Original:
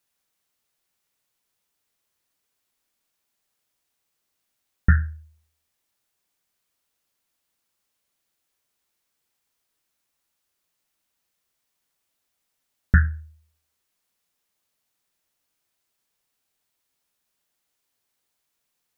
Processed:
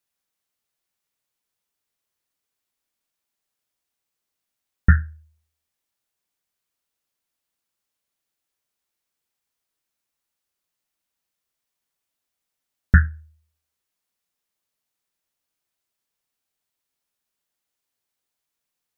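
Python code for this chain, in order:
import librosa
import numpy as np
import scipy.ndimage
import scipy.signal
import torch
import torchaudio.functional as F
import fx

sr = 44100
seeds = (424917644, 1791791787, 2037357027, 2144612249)

y = fx.upward_expand(x, sr, threshold_db=-28.0, expansion=1.5)
y = y * 10.0 ** (3.5 / 20.0)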